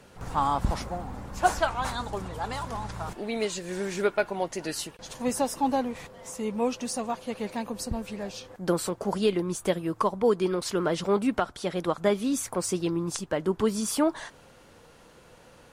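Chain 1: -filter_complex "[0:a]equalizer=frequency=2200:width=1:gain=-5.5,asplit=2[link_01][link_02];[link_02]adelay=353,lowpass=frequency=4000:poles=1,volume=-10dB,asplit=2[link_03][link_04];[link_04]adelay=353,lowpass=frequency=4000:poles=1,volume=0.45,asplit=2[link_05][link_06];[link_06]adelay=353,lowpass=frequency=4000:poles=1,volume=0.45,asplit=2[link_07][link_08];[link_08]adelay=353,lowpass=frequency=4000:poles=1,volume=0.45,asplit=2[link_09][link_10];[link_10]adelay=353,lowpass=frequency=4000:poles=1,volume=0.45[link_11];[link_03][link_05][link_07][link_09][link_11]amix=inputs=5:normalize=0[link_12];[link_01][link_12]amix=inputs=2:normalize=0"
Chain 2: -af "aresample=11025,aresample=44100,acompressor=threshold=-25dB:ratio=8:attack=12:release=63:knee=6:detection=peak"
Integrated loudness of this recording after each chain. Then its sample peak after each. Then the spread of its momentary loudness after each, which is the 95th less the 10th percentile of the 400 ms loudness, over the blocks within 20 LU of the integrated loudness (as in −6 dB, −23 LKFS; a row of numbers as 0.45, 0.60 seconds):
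−29.5, −32.0 LKFS; −9.0, −14.5 dBFS; 10, 7 LU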